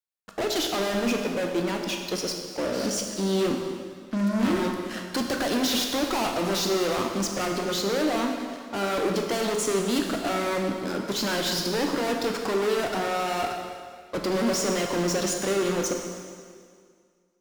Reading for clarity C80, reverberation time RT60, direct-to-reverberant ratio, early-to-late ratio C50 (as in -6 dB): 5.0 dB, 2.0 s, 1.5 dB, 3.5 dB